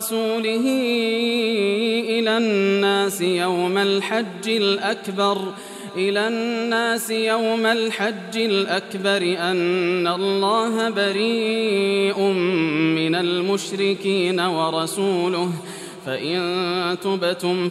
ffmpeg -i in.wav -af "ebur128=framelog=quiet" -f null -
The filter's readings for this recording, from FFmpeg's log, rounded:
Integrated loudness:
  I:         -20.6 LUFS
  Threshold: -30.7 LUFS
Loudness range:
  LRA:         2.4 LU
  Threshold: -40.6 LUFS
  LRA low:   -22.0 LUFS
  LRA high:  -19.6 LUFS